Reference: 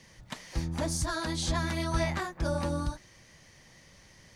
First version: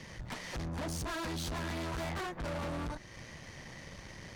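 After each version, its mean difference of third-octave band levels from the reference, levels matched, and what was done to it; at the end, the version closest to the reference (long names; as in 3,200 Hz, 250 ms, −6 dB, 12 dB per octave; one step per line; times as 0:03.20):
7.5 dB: high-shelf EQ 4,500 Hz −10.5 dB
in parallel at +3 dB: downward compressor, threshold −43 dBFS, peak gain reduction 17.5 dB
on the sum: tube saturation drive 41 dB, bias 0.65
level +5 dB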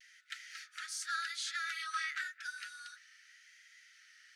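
17.0 dB: Chebyshev high-pass filter 1,300 Hz, order 10
high-shelf EQ 4,100 Hz −11.5 dB
pitch vibrato 0.89 Hz 47 cents
level +2.5 dB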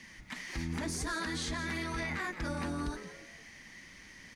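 5.0 dB: octave-band graphic EQ 125/250/500/2,000 Hz −8/+9/−8/+9 dB
brickwall limiter −28 dBFS, peak gain reduction 11.5 dB
echo with shifted repeats 170 ms, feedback 37%, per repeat +130 Hz, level −12 dB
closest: third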